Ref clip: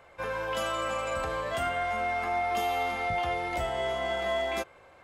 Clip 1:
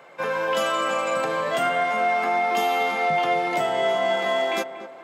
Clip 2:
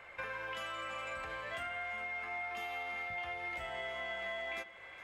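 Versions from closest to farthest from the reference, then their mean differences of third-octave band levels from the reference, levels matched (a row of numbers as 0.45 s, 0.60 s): 1, 2; 2.5 dB, 4.5 dB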